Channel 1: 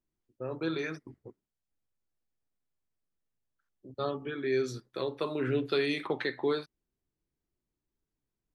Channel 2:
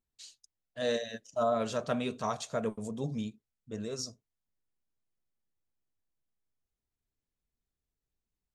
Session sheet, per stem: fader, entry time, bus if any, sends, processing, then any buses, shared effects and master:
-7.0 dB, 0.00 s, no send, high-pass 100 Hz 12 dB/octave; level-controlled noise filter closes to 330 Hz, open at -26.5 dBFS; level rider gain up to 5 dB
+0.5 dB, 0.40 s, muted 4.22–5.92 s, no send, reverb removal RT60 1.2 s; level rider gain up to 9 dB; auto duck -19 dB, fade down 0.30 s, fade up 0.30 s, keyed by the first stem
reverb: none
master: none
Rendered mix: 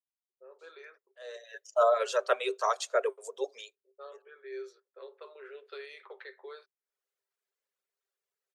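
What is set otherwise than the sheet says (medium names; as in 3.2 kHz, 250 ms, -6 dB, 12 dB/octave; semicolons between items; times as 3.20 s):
stem 1 -7.0 dB -> -16.0 dB; master: extra rippled Chebyshev high-pass 380 Hz, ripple 6 dB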